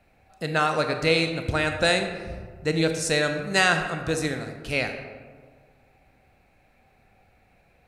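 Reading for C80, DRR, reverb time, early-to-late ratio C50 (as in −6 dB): 8.5 dB, 5.5 dB, 1.7 s, 7.0 dB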